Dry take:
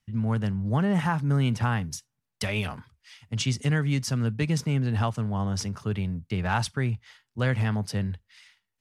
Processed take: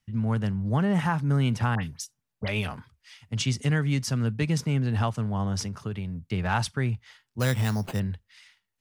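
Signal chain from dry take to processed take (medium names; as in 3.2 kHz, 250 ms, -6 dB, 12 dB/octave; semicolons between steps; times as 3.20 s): 1.75–2.48 s: phase dispersion highs, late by 77 ms, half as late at 2.2 kHz; 5.65–6.32 s: compression, threshold -29 dBFS, peak gain reduction 5.5 dB; 7.40–8.00 s: careless resampling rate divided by 8×, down none, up hold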